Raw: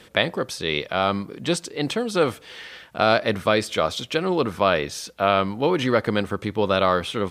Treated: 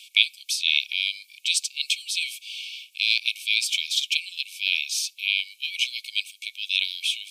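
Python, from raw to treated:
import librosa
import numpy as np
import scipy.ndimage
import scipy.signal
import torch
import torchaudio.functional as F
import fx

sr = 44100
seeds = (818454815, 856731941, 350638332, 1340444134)

y = fx.brickwall_highpass(x, sr, low_hz=2200.0)
y = y * librosa.db_to_amplitude(7.0)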